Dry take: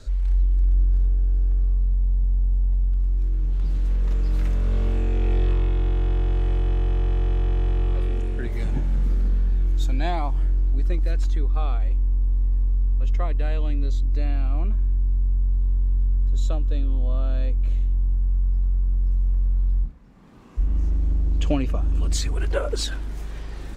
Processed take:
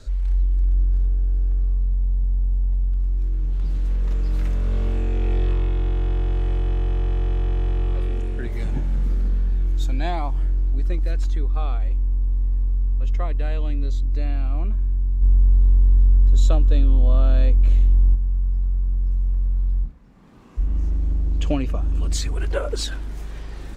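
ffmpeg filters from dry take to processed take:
-filter_complex "[0:a]asplit=3[s0][s1][s2];[s0]afade=t=out:st=15.21:d=0.02[s3];[s1]acontrast=75,afade=t=in:st=15.21:d=0.02,afade=t=out:st=18.14:d=0.02[s4];[s2]afade=t=in:st=18.14:d=0.02[s5];[s3][s4][s5]amix=inputs=3:normalize=0"

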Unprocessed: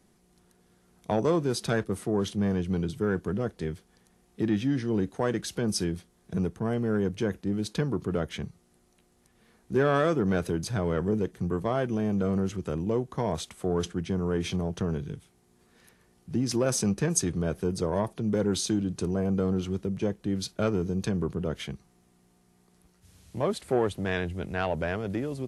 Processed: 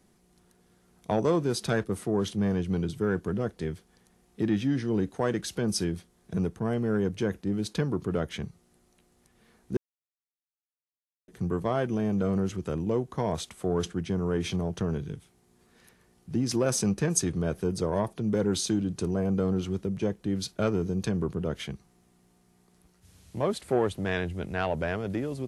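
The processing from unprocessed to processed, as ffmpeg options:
-filter_complex "[0:a]asplit=3[s0][s1][s2];[s0]atrim=end=9.77,asetpts=PTS-STARTPTS,afade=t=out:st=9.766:d=0.004:c=hsin[s3];[s1]atrim=start=9.77:end=11.28,asetpts=PTS-STARTPTS,volume=0[s4];[s2]atrim=start=11.28,asetpts=PTS-STARTPTS,afade=t=in:d=0.004:c=hsin[s5];[s3][s4][s5]concat=n=3:v=0:a=1"

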